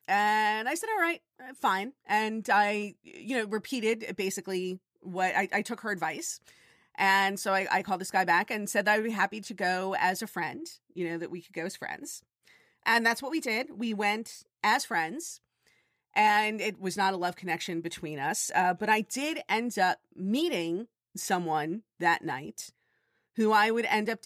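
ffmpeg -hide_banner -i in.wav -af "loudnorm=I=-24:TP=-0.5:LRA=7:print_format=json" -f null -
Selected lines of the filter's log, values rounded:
"input_i" : "-28.9",
"input_tp" : "-11.8",
"input_lra" : "4.4",
"input_thresh" : "-39.5",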